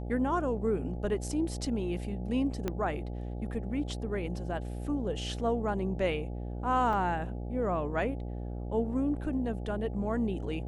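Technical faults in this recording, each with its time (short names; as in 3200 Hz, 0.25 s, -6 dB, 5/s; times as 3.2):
buzz 60 Hz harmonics 14 -37 dBFS
2.68 pop -18 dBFS
6.93 gap 2.9 ms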